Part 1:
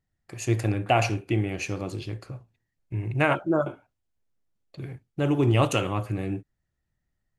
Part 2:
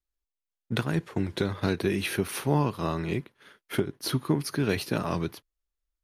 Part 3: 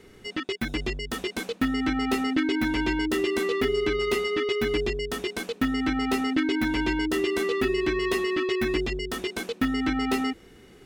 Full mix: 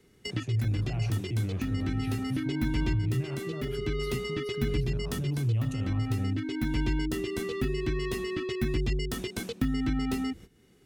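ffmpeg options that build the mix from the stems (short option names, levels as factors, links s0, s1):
-filter_complex "[0:a]highshelf=f=3400:g=-10,acrossover=split=130|3000[s0][s1][s2];[s1]acompressor=threshold=0.0158:ratio=3[s3];[s0][s3][s2]amix=inputs=3:normalize=0,volume=1.06,asplit=2[s4][s5];[1:a]acompressor=threshold=0.0316:ratio=6,volume=0.596[s6];[2:a]agate=range=0.141:threshold=0.00708:ratio=16:detection=peak,highshelf=f=3800:g=9,volume=1.33[s7];[s5]apad=whole_len=478719[s8];[s7][s8]sidechaincompress=threshold=0.0141:ratio=8:attack=37:release=583[s9];[s4][s6]amix=inputs=2:normalize=0,alimiter=level_in=1.5:limit=0.0631:level=0:latency=1:release=34,volume=0.668,volume=1[s10];[s9][s10]amix=inputs=2:normalize=0,equalizer=f=140:t=o:w=2.2:g=8,acrossover=split=160[s11][s12];[s12]acompressor=threshold=0.0141:ratio=3[s13];[s11][s13]amix=inputs=2:normalize=0"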